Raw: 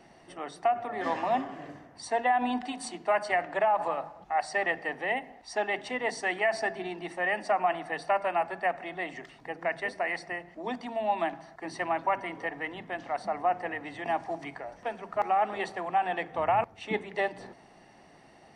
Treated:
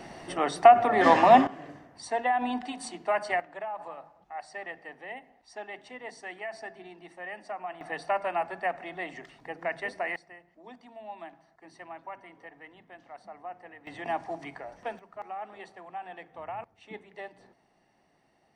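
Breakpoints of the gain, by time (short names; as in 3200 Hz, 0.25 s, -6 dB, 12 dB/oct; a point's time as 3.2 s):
+11 dB
from 1.47 s -1 dB
from 3.4 s -11 dB
from 7.81 s -1.5 dB
from 10.16 s -14 dB
from 13.87 s -1.5 dB
from 14.99 s -12.5 dB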